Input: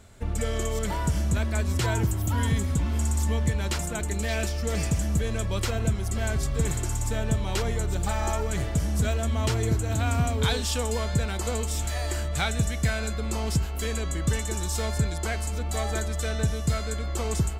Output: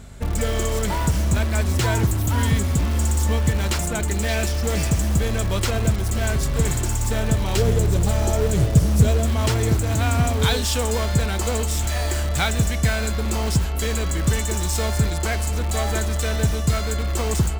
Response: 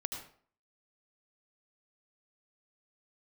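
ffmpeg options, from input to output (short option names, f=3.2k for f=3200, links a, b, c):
-filter_complex "[0:a]asettb=1/sr,asplit=3[a][b][c];[a]atrim=end=7.574[d];[b]atrim=start=7.57:end=9.26,asetpts=PTS-STARTPTS,afade=t=in:d=0.004:c=qsin,afade=t=out:st=1.686:d=0.004:c=qsin,equalizer=f=125:t=o:w=1:g=9,equalizer=f=500:t=o:w=1:g=7,equalizer=f=1k:t=o:w=1:g=-10,equalizer=f=2k:t=o:w=1:g=-6[e];[c]atrim=start=9.256[f];[d][e]acrossfade=d=0.004:c1=hsin:c2=qsin[g];[g][f]acrossfade=d=0.004:c1=qsin:c2=hsin,aeval=exprs='val(0)+0.00447*(sin(2*PI*50*n/s)+sin(2*PI*2*50*n/s)/2+sin(2*PI*3*50*n/s)/3+sin(2*PI*4*50*n/s)/4+sin(2*PI*5*50*n/s)/5)':c=same,asplit=2[h][i];[i]aeval=exprs='(mod(16.8*val(0)+1,2)-1)/16.8':c=same,volume=-11.5dB[j];[h][j]amix=inputs=2:normalize=0,volume=5dB"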